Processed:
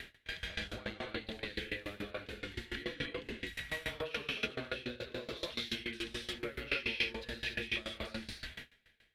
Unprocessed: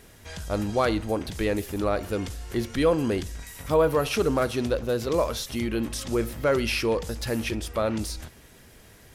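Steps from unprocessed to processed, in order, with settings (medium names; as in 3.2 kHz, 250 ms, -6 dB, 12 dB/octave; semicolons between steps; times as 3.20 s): treble shelf 6.4 kHz -8.5 dB; compression 5:1, threshold -41 dBFS, peak gain reduction 21.5 dB; high-order bell 2.6 kHz +14.5 dB; band-stop 980 Hz, Q 20; gated-style reverb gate 320 ms rising, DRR -5.5 dB; upward compressor, threshold -38 dBFS; gate with hold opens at -28 dBFS; sawtooth tremolo in dB decaying 7 Hz, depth 21 dB; trim -2 dB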